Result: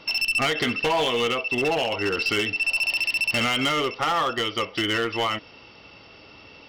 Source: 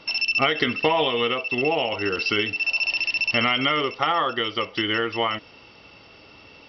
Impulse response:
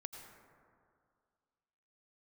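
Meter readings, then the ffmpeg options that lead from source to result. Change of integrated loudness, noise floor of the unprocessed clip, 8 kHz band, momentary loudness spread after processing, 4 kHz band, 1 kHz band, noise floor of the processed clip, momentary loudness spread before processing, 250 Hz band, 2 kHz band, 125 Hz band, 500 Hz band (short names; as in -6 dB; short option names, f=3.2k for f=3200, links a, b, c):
-1.0 dB, -49 dBFS, n/a, 4 LU, -1.0 dB, -1.5 dB, -49 dBFS, 5 LU, -0.5 dB, -0.5 dB, +0.5 dB, -1.0 dB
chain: -af "aeval=exprs='0.447*(cos(1*acos(clip(val(0)/0.447,-1,1)))-cos(1*PI/2))+0.02*(cos(3*acos(clip(val(0)/0.447,-1,1)))-cos(3*PI/2))+0.0158*(cos(4*acos(clip(val(0)/0.447,-1,1)))-cos(4*PI/2))':c=same,asoftclip=type=hard:threshold=-20.5dB,volume=2dB"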